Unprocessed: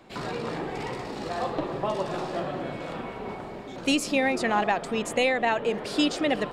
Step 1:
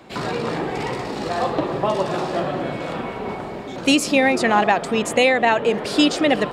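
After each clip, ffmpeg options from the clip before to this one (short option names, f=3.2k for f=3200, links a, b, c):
-af "highpass=48,volume=7.5dB"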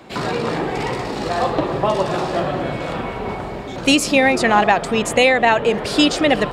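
-af "asubboost=boost=3:cutoff=120,volume=3dB"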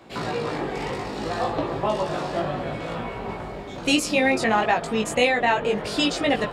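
-af "flanger=delay=17.5:depth=3.2:speed=0.64,volume=-3dB"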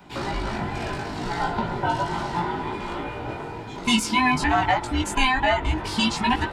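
-af "afftfilt=real='real(if(between(b,1,1008),(2*floor((b-1)/24)+1)*24-b,b),0)':imag='imag(if(between(b,1,1008),(2*floor((b-1)/24)+1)*24-b,b),0)*if(between(b,1,1008),-1,1)':win_size=2048:overlap=0.75"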